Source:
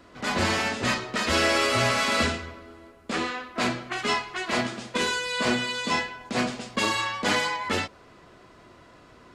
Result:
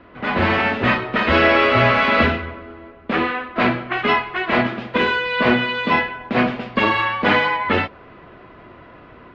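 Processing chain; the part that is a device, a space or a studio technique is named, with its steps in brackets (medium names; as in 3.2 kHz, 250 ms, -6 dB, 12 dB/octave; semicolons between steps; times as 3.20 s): action camera in a waterproof case (low-pass 2.9 kHz 24 dB/octave; level rider gain up to 3 dB; trim +6 dB; AAC 64 kbps 32 kHz)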